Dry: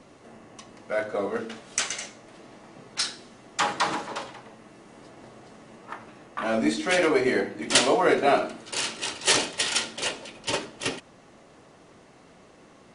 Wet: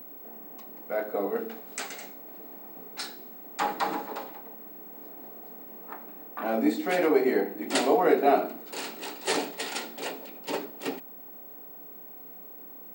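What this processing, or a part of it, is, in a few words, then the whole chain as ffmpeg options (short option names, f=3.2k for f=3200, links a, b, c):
old television with a line whistle: -af "highpass=f=170:w=0.5412,highpass=f=170:w=1.3066,equalizer=f=180:t=q:w=4:g=6,equalizer=f=280:t=q:w=4:g=8,equalizer=f=430:t=q:w=4:g=8,equalizer=f=770:t=q:w=4:g=9,equalizer=f=3.1k:t=q:w=4:g=-6,equalizer=f=5.9k:t=q:w=4:g=-9,lowpass=f=8.9k:w=0.5412,lowpass=f=8.9k:w=1.3066,aeval=exprs='val(0)+0.0158*sin(2*PI*15734*n/s)':c=same,volume=-6.5dB"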